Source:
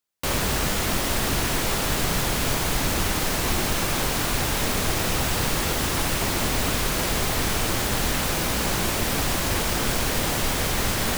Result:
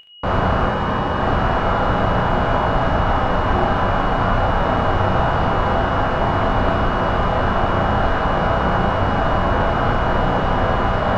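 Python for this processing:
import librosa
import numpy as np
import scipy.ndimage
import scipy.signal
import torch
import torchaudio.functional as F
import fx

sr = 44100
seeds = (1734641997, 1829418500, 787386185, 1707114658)

p1 = fx.band_shelf(x, sr, hz=970.0, db=10.5, octaves=1.7)
p2 = fx.notch_comb(p1, sr, f0_hz=690.0, at=(0.66, 1.2))
p3 = fx.sample_hold(p2, sr, seeds[0], rate_hz=1000.0, jitter_pct=0)
p4 = p2 + (p3 * 10.0 ** (-12.0 / 20.0))
p5 = p4 + 10.0 ** (-28.0 / 20.0) * np.sin(2.0 * np.pi * 2900.0 * np.arange(len(p4)) / sr)
p6 = fx.spacing_loss(p5, sr, db_at_10k=44)
p7 = p6 + fx.room_early_taps(p6, sr, ms=(33, 72), db=(-5.5, -6.5), dry=0)
p8 = fx.rev_gated(p7, sr, seeds[1], gate_ms=150, shape='falling', drr_db=5.0)
y = p8 * 10.0 ** (2.5 / 20.0)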